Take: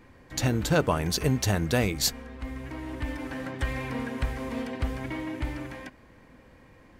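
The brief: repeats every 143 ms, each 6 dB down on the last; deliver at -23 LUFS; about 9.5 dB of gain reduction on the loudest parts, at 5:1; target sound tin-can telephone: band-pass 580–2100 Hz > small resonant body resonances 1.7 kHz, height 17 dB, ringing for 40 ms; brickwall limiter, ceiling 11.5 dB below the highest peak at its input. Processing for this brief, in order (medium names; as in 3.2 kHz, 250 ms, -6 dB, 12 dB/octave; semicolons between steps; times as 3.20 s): compression 5:1, threshold -30 dBFS; peak limiter -30 dBFS; band-pass 580–2100 Hz; feedback delay 143 ms, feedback 50%, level -6 dB; small resonant body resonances 1.7 kHz, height 17 dB, ringing for 40 ms; trim +19 dB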